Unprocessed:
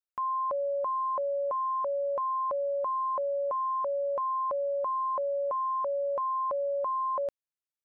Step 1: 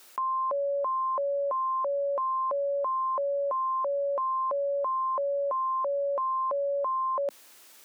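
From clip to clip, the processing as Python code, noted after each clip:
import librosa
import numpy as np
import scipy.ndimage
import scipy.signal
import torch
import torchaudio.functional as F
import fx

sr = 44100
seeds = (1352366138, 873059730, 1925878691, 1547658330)

y = scipy.signal.sosfilt(scipy.signal.butter(4, 230.0, 'highpass', fs=sr, output='sos'), x)
y = fx.env_flatten(y, sr, amount_pct=100)
y = y * librosa.db_to_amplitude(1.5)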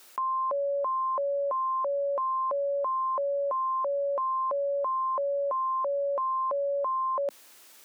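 y = x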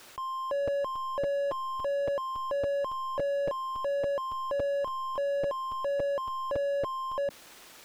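y = fx.buffer_crackle(x, sr, first_s=0.67, period_s=0.28, block=256, kind='repeat')
y = fx.slew_limit(y, sr, full_power_hz=9.8)
y = y * librosa.db_to_amplitude(7.0)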